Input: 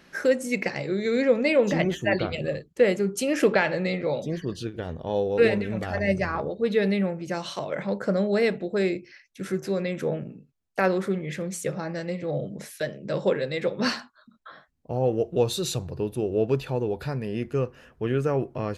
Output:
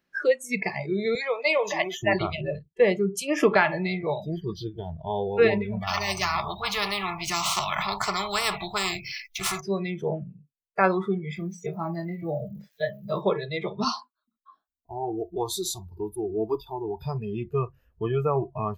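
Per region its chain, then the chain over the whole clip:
0:01.15–0:02.03: high-pass filter 510 Hz + high-shelf EQ 3,100 Hz +5.5 dB
0:05.87–0:09.61: running median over 3 samples + every bin compressed towards the loudest bin 4 to 1
0:11.35–0:13.21: low-pass filter 4,800 Hz + surface crackle 250 per second −46 dBFS + double-tracking delay 24 ms −7.5 dB
0:13.84–0:17.00: high-shelf EQ 7,200 Hz +5 dB + phaser with its sweep stopped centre 540 Hz, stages 6
whole clip: noise reduction from a noise print of the clip's start 22 dB; dynamic equaliser 1,100 Hz, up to +8 dB, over −44 dBFS, Q 1.7

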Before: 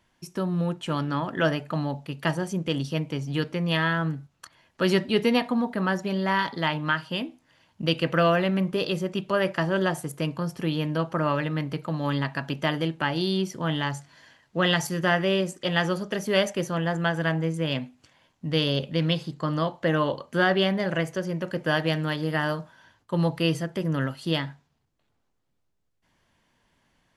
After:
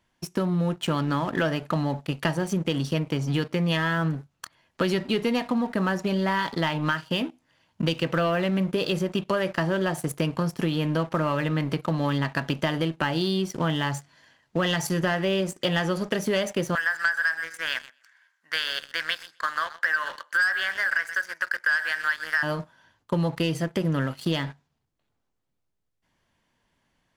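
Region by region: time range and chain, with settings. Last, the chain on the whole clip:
0:16.75–0:22.43: high-pass with resonance 1,600 Hz, resonance Q 6.3 + parametric band 2,900 Hz −7.5 dB 0.93 octaves + repeating echo 125 ms, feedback 22%, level −16.5 dB
whole clip: leveller curve on the samples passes 2; downward compressor, threshold −22 dBFS

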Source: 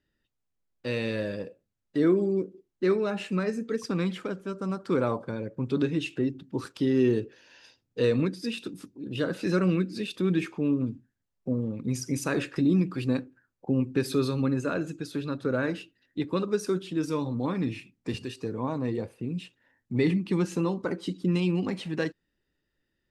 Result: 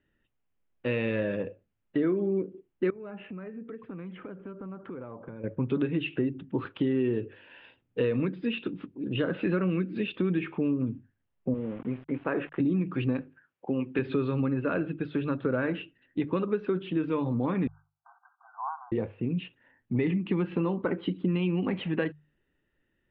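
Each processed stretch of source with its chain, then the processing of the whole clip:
0:02.90–0:05.44: downward compressor, threshold −41 dBFS + high-frequency loss of the air 430 metres
0:11.54–0:12.60: resonant band-pass 800 Hz, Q 0.53 + centre clipping without the shift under −46 dBFS + high-frequency loss of the air 230 metres
0:13.21–0:13.99: high-pass filter 430 Hz 6 dB per octave + high-shelf EQ 3,400 Hz +9 dB
0:17.67–0:18.92: linear-phase brick-wall band-pass 680–1,600 Hz + high-frequency loss of the air 260 metres
whole clip: Butterworth low-pass 3,200 Hz 48 dB per octave; mains-hum notches 50/100/150 Hz; downward compressor 5 to 1, threshold −28 dBFS; level +4 dB

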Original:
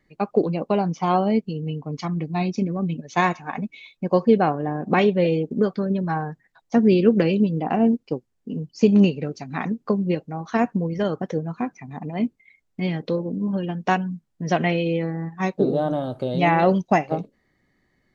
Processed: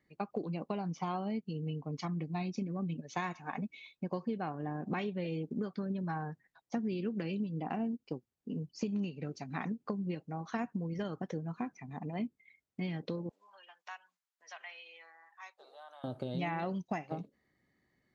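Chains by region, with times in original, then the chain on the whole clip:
0:13.29–0:16.04: high-pass filter 930 Hz 24 dB per octave + downward compressor 1.5 to 1, threshold −55 dBFS
whole clip: high-pass filter 57 Hz; dynamic equaliser 510 Hz, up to −6 dB, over −32 dBFS, Q 1.5; downward compressor 6 to 1, threshold −24 dBFS; level −8.5 dB

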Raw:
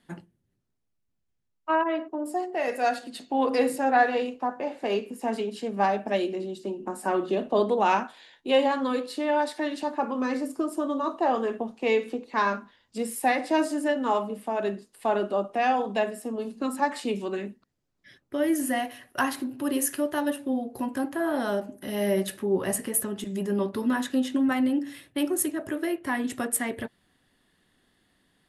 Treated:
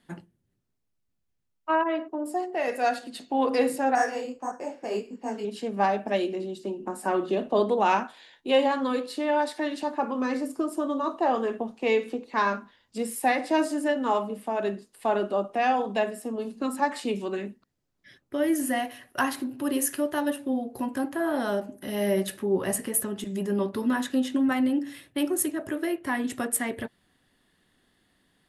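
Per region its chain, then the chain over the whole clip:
0:03.95–0:05.45: bad sample-rate conversion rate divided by 6×, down filtered, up hold + high-frequency loss of the air 81 metres + micro pitch shift up and down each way 58 cents
whole clip: no processing

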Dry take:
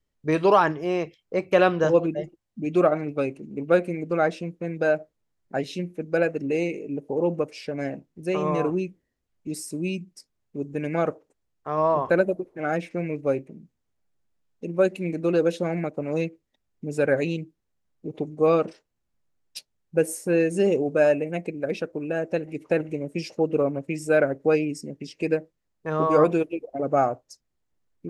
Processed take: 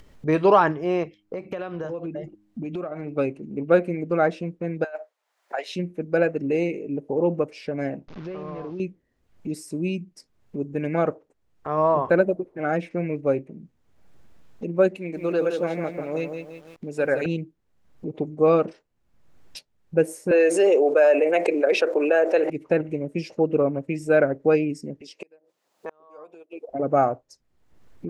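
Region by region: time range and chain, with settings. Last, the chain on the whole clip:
0:01.03–0:03.14: hum removal 103.6 Hz, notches 3 + downward compressor 12 to 1, threshold −29 dBFS
0:04.84–0:05.76: high-pass filter 640 Hz 24 dB per octave + compressor whose output falls as the input rises −30 dBFS, ratio −0.5
0:08.08–0:08.80: linear delta modulator 32 kbit/s, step −39 dBFS + high-frequency loss of the air 100 metres + downward compressor 3 to 1, threshold −37 dBFS
0:14.97–0:17.26: low-shelf EQ 300 Hz −11 dB + feedback echo at a low word length 167 ms, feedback 35%, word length 9 bits, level −6 dB
0:20.31–0:22.50: high-pass filter 420 Hz 24 dB per octave + envelope flattener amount 70%
0:25.01–0:26.69: gate with flip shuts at −16 dBFS, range −33 dB + high-pass filter 610 Hz + parametric band 1,800 Hz −7.5 dB 1.3 octaves
whole clip: upward compression, threshold −32 dBFS; high-shelf EQ 3,900 Hz −10 dB; level +2 dB

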